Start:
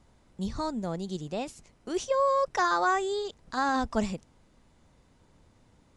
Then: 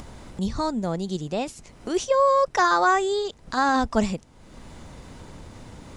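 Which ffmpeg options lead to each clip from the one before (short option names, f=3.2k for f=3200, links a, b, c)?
-af "acompressor=mode=upward:threshold=-35dB:ratio=2.5,volume=6dB"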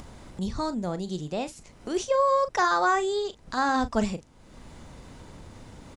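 -filter_complex "[0:a]asplit=2[a][b];[b]adelay=39,volume=-13dB[c];[a][c]amix=inputs=2:normalize=0,volume=-3.5dB"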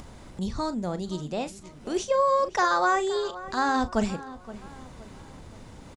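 -filter_complex "[0:a]asplit=2[a][b];[b]adelay=521,lowpass=f=2.9k:p=1,volume=-16dB,asplit=2[c][d];[d]adelay=521,lowpass=f=2.9k:p=1,volume=0.44,asplit=2[e][f];[f]adelay=521,lowpass=f=2.9k:p=1,volume=0.44,asplit=2[g][h];[h]adelay=521,lowpass=f=2.9k:p=1,volume=0.44[i];[a][c][e][g][i]amix=inputs=5:normalize=0"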